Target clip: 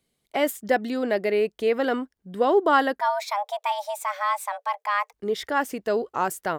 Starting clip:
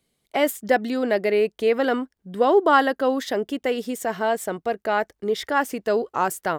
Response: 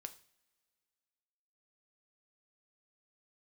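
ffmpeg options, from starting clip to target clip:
-filter_complex "[0:a]asplit=3[a][b][c];[a]afade=t=out:st=2.99:d=0.02[d];[b]afreqshift=400,afade=t=in:st=2.99:d=0.02,afade=t=out:st=5.12:d=0.02[e];[c]afade=t=in:st=5.12:d=0.02[f];[d][e][f]amix=inputs=3:normalize=0,volume=-2.5dB"

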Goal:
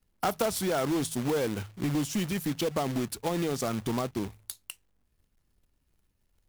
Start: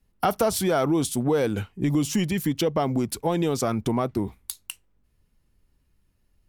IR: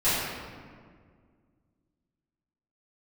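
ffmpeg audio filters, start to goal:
-af "bandreject=f=53.17:t=h:w=4,bandreject=f=106.34:t=h:w=4,bandreject=f=159.51:t=h:w=4,acrusher=bits=2:mode=log:mix=0:aa=0.000001,volume=-6dB"

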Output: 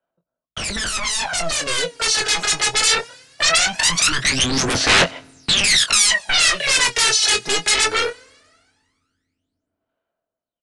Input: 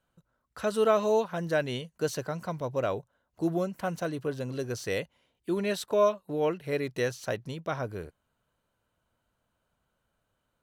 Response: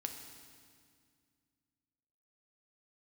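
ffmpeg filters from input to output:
-filter_complex "[0:a]acrossover=split=230 5200:gain=0.126 1 0.224[a][b][c];[a][b][c]amix=inputs=3:normalize=0,agate=range=-37dB:threshold=-53dB:ratio=16:detection=peak,equalizer=f=660:w=6.1:g=13,acompressor=threshold=-27dB:ratio=5,aeval=exprs='0.0531*sin(PI/2*7.08*val(0)/0.0531)':c=same,asplit=2[d][e];[1:a]atrim=start_sample=2205[f];[e][f]afir=irnorm=-1:irlink=0,volume=-15.5dB[g];[d][g]amix=inputs=2:normalize=0,aphaser=in_gain=1:out_gain=1:delay=2.4:decay=0.78:speed=0.2:type=sinusoidal,aresample=22050,aresample=44100,acrossover=split=720|1500[h][i][j];[j]dynaudnorm=f=780:g=5:m=13dB[k];[h][i][k]amix=inputs=3:normalize=0,asplit=2[l][m];[m]adelay=23,volume=-9dB[n];[l][n]amix=inputs=2:normalize=0,volume=-1dB"

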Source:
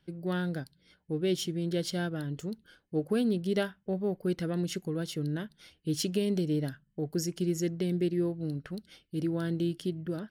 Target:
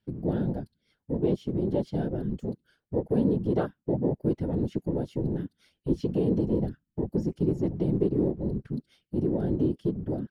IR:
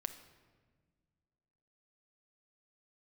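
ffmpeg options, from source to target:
-filter_complex "[0:a]acrossover=split=4300[a][b];[b]acompressor=threshold=-50dB:ratio=4:attack=1:release=60[c];[a][c]amix=inputs=2:normalize=0,afwtdn=0.0224,asplit=2[d][e];[e]acompressor=threshold=-40dB:ratio=12,volume=-2.5dB[f];[d][f]amix=inputs=2:normalize=0,afftfilt=real='hypot(re,im)*cos(2*PI*random(0))':imag='hypot(re,im)*sin(2*PI*random(1))':win_size=512:overlap=0.75,volume=8.5dB"

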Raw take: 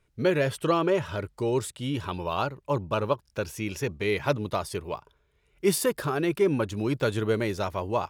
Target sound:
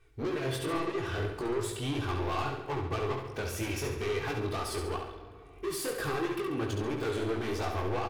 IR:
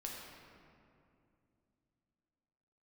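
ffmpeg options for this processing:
-filter_complex "[0:a]aecho=1:1:2.6:0.96,acompressor=threshold=-25dB:ratio=6,asoftclip=type=tanh:threshold=-33dB,flanger=delay=17.5:depth=5.5:speed=3,aecho=1:1:69|138|207|276|345|414:0.501|0.231|0.106|0.0488|0.0224|0.0103,asplit=2[a][b];[1:a]atrim=start_sample=2205,lowpass=5.2k[c];[b][c]afir=irnorm=-1:irlink=0,volume=-5dB[d];[a][d]amix=inputs=2:normalize=0,volume=3dB"

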